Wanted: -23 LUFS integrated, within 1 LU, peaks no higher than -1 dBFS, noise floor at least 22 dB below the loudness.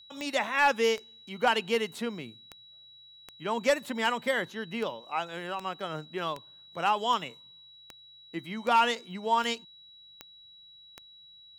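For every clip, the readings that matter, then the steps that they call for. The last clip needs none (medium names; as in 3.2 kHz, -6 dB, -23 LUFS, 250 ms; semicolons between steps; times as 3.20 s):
clicks found 15; steady tone 3.9 kHz; tone level -51 dBFS; loudness -29.5 LUFS; peak level -15.0 dBFS; loudness target -23.0 LUFS
-> de-click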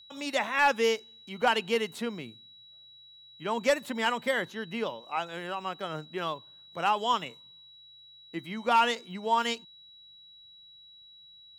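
clicks found 0; steady tone 3.9 kHz; tone level -51 dBFS
-> band-stop 3.9 kHz, Q 30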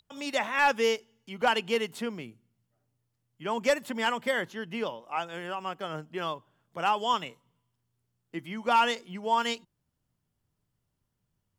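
steady tone not found; loudness -29.5 LUFS; peak level -15.0 dBFS; loudness target -23.0 LUFS
-> trim +6.5 dB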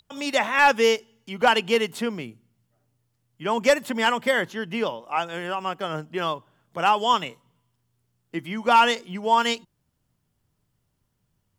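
loudness -23.0 LUFS; peak level -8.5 dBFS; noise floor -74 dBFS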